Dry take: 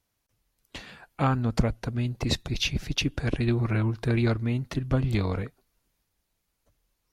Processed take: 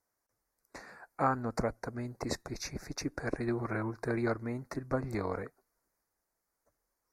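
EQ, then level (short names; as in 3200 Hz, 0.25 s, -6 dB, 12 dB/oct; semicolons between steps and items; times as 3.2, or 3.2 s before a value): Butterworth band-stop 3100 Hz, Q 0.98; tone controls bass -14 dB, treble -4 dB; -1.0 dB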